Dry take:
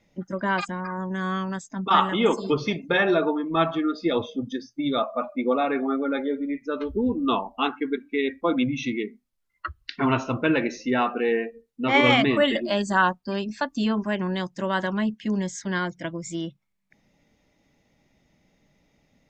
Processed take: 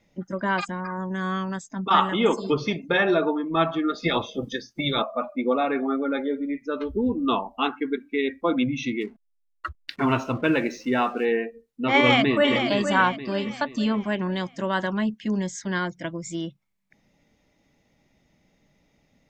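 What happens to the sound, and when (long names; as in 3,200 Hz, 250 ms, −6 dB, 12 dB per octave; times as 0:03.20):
0:03.88–0:05.01: ceiling on every frequency bin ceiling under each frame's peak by 17 dB
0:09.01–0:11.25: slack as between gear wheels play −47 dBFS
0:11.97–0:12.55: delay throw 470 ms, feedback 45%, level −7.5 dB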